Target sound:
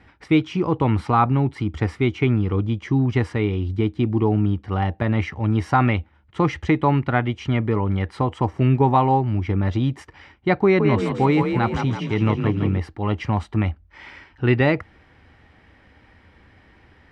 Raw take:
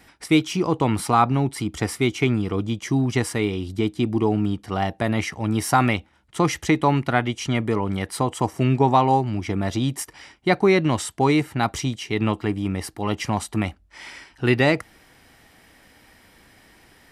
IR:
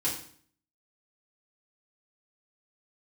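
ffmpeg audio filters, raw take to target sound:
-filter_complex "[0:a]lowpass=2600,equalizer=f=79:w=1.5:g=10.5,bandreject=f=680:w=13,asettb=1/sr,asplit=3[s0][s1][s2];[s0]atrim=end=10.634[s3];[s1]atrim=start=10.63:end=12.78,asetpts=PTS-STARTPTS,afade=t=in:d=0.004:c=qsin,afade=t=out:st=2.146:d=0.004:c=qsin,asplit=7[s4][s5][s6][s7][s8][s9][s10];[s5]adelay=166,afreqshift=33,volume=0.501[s11];[s6]adelay=332,afreqshift=66,volume=0.245[s12];[s7]adelay=498,afreqshift=99,volume=0.12[s13];[s8]adelay=664,afreqshift=132,volume=0.0589[s14];[s9]adelay=830,afreqshift=165,volume=0.0288[s15];[s10]adelay=996,afreqshift=198,volume=0.0141[s16];[s4][s11][s12][s13][s14][s15][s16]amix=inputs=7:normalize=0,atrim=end_sample=94815[s17];[s2]atrim=start=12.776[s18];[s3][s17]acrossfade=d=0.004:c1=hsin:c2=qsin[s19];[s19][s18]acrossfade=d=0.004:c1=qsin:c2=hsin"

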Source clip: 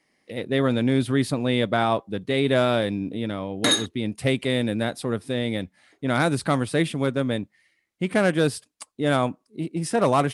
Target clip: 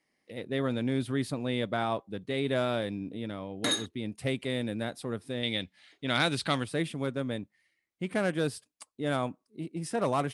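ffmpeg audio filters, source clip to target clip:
-filter_complex "[0:a]asettb=1/sr,asplit=3[s0][s1][s2];[s0]atrim=end=5.434[s3];[s1]atrim=start=5.43:end=6.64,asetpts=PTS-STARTPTS,afade=t=in:d=0.004:c=qsin,afade=t=out:st=1.206:d=0.004:c=qsin,equalizer=f=3400:w=0.83:g=13.5[s4];[s2]atrim=start=6.636[s5];[s3][s4]acrossfade=d=0.004:c1=hsin:c2=qsin[s6];[s6][s5]acrossfade=d=0.004:c1=qsin:c2=hsin,volume=0.376"

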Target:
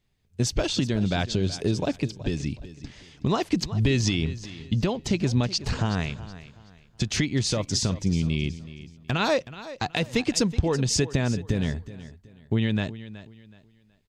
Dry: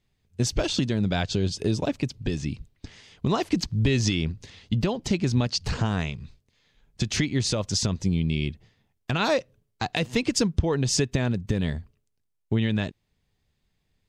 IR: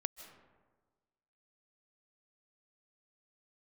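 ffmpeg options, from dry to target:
-af "aecho=1:1:373|746|1119:0.168|0.0504|0.0151"

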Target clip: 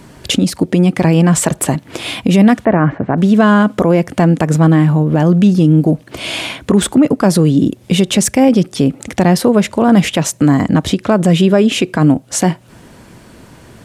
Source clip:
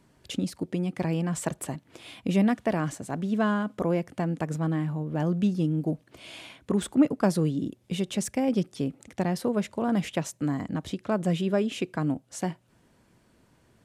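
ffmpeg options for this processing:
-filter_complex "[0:a]asettb=1/sr,asplit=3[s0][s1][s2];[s0]atrim=end=2.654[s3];[s1]atrim=start=2.65:end=3.18,asetpts=PTS-STARTPTS,afade=t=in:d=0.004:c=qsin,afade=t=out:st=0.526:d=0.004:c=qsin,lowpass=f=2000:w=0.5412,lowpass=f=2000:w=1.3066[s4];[s2]atrim=start=3.176[s5];[s3][s4]acrossfade=d=0.004:c1=hsin:c2=qsin[s6];[s6][s5]acrossfade=d=0.004:c1=qsin:c2=hsin,asplit=2[s7][s8];[s8]acompressor=threshold=0.0141:ratio=6,volume=1.19[s9];[s7][s9]amix=inputs=2:normalize=0,alimiter=level_in=7.08:limit=0.891:release=50:level=0:latency=1,volume=0.891"

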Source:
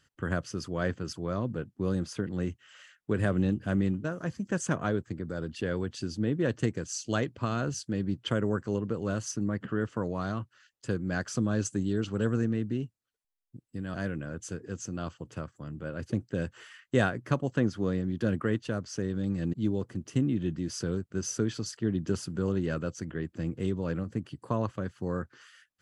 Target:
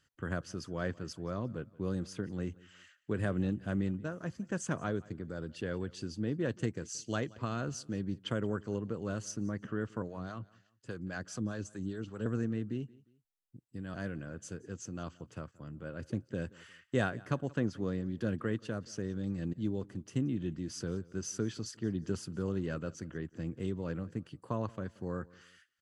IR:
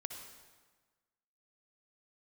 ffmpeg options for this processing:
-filter_complex "[0:a]asettb=1/sr,asplit=3[s0][s1][s2];[s0]atrim=end=10.024[s3];[s1]atrim=start=10.02:end=12.26,asetpts=PTS-STARTPTS,afade=t=in:d=0.004:c=qsin,afade=t=out:st=2.236:d=0.004:c=qsin,acrossover=split=530[s4][s5];[s4]aeval=exprs='val(0)*(1-0.7/2+0.7/2*cos(2*PI*4.9*n/s))':c=same[s6];[s5]aeval=exprs='val(0)*(1-0.7/2-0.7/2*cos(2*PI*4.9*n/s))':c=same[s7];[s6][s7]amix=inputs=2:normalize=0[s8];[s2]atrim=start=12.256[s9];[s3][s8]acrossfade=d=0.004:c1=hsin:c2=qsin[s10];[s10][s9]acrossfade=d=0.004:c1=qsin:c2=hsin,aecho=1:1:177|354:0.0708|0.0241,volume=0.531"

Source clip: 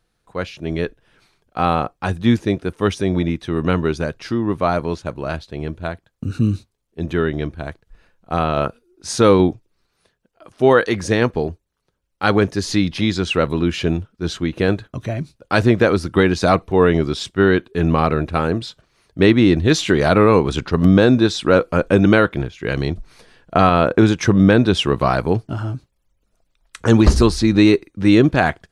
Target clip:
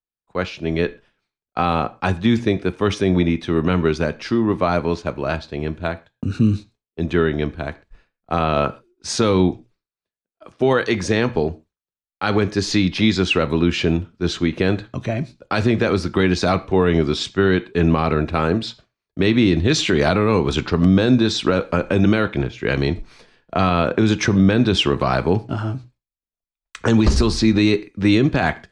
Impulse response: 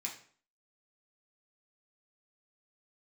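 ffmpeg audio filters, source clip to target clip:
-filter_complex "[0:a]lowpass=6100,agate=range=0.0224:threshold=0.00794:ratio=3:detection=peak,acrossover=split=180|3000[s0][s1][s2];[s1]acompressor=threshold=0.178:ratio=6[s3];[s0][s3][s2]amix=inputs=3:normalize=0,asplit=2[s4][s5];[1:a]atrim=start_sample=2205,atrim=end_sample=6174[s6];[s5][s6]afir=irnorm=-1:irlink=0,volume=0.335[s7];[s4][s7]amix=inputs=2:normalize=0,alimiter=level_in=2.24:limit=0.891:release=50:level=0:latency=1,volume=0.562"

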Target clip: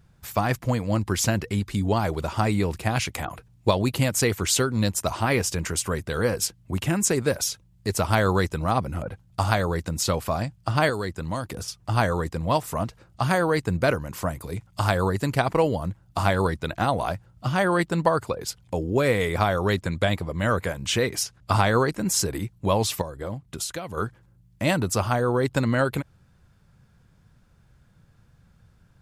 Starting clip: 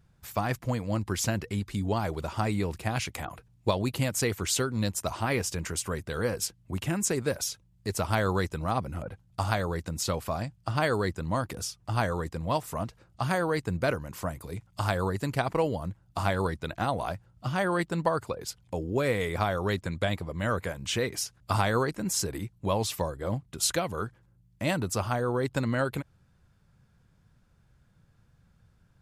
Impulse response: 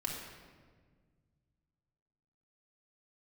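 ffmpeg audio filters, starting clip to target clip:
-filter_complex "[0:a]asettb=1/sr,asplit=3[s0][s1][s2];[s0]atrim=end=10.894[s3];[s1]atrim=start=10.89:end=11.68,asetpts=PTS-STARTPTS,afade=t=in:d=0.004:c=qsin,afade=t=out:st=0.786:d=0.004:c=qsin,acrossover=split=940|2300[s4][s5][s6];[s4]acompressor=threshold=0.0224:ratio=4[s7];[s5]acompressor=threshold=0.00708:ratio=4[s8];[s6]acompressor=threshold=0.00562:ratio=4[s9];[s7][s8][s9]amix=inputs=3:normalize=0[s10];[s2]atrim=start=11.676[s11];[s3][s10]acrossfade=d=0.004:c1=hsin:c2=qsin[s12];[s12][s11]acrossfade=d=0.004:c1=qsin:c2=hsin,asettb=1/sr,asplit=3[s13][s14][s15];[s13]atrim=end=21.234[s16];[s14]atrim=start=21.23:end=21.85,asetpts=PTS-STARTPTS,afade=t=in:d=0.004:c=qsin,afade=t=out:st=0.616:d=0.004:c=qsin,highshelf=f=10000:g=-8.5[s17];[s15]atrim=start=21.846[s18];[s16][s17]acrossfade=d=0.004:c1=hsin:c2=qsin[s19];[s19][s18]acrossfade=d=0.004:c1=qsin:c2=hsin,asettb=1/sr,asplit=3[s20][s21][s22];[s20]atrim=end=23.014[s23];[s21]atrim=start=23.01:end=23.97,asetpts=PTS-STARTPTS,afade=t=in:d=0.004:c=qsin,afade=t=out:st=0.956:d=0.004:c=qsin,acompressor=threshold=0.02:ratio=10[s24];[s22]atrim=start=23.966[s25];[s23][s24]acrossfade=d=0.004:c1=hsin:c2=qsin[s26];[s26][s25]acrossfade=d=0.004:c1=qsin:c2=hsin,volume=1.88"

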